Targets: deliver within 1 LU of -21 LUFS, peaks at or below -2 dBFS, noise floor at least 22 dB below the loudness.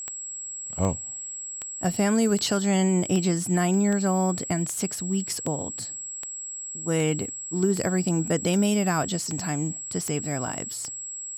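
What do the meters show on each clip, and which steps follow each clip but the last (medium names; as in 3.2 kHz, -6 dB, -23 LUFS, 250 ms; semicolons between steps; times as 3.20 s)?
clicks found 15; steady tone 7.7 kHz; tone level -33 dBFS; loudness -26.0 LUFS; peak level -11.0 dBFS; loudness target -21.0 LUFS
-> de-click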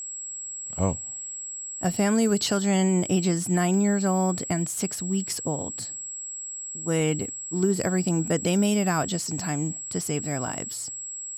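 clicks found 0; steady tone 7.7 kHz; tone level -33 dBFS
-> band-stop 7.7 kHz, Q 30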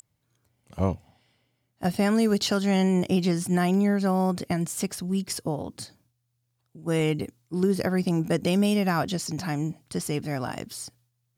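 steady tone not found; loudness -26.0 LUFS; peak level -11.5 dBFS; loudness target -21.0 LUFS
-> trim +5 dB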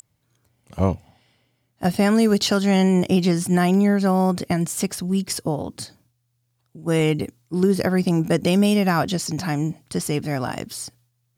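loudness -21.0 LUFS; peak level -6.5 dBFS; noise floor -71 dBFS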